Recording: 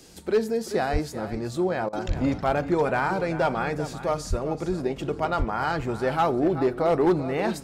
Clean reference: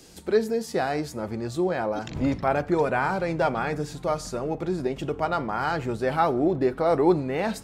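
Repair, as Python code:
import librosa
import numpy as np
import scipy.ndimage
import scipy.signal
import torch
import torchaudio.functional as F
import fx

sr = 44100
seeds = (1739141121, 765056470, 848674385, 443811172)

y = fx.fix_declip(x, sr, threshold_db=-15.0)
y = fx.fix_deplosive(y, sr, at_s=(0.92, 2.07, 4.29, 5.38))
y = fx.fix_interpolate(y, sr, at_s=(1.89,), length_ms=38.0)
y = fx.fix_echo_inverse(y, sr, delay_ms=386, level_db=-13.0)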